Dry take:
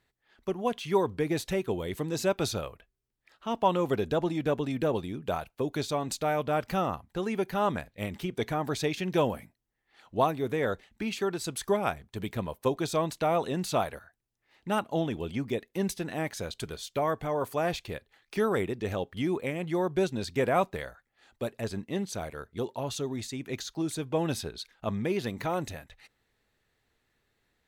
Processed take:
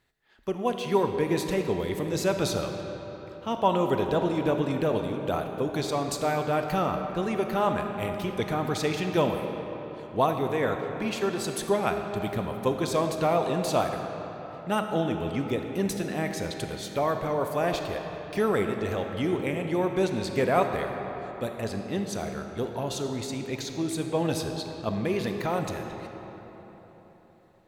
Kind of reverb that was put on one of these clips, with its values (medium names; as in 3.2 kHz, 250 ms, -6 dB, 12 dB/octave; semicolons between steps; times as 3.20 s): algorithmic reverb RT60 4.2 s, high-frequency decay 0.6×, pre-delay 0 ms, DRR 4.5 dB; trim +1.5 dB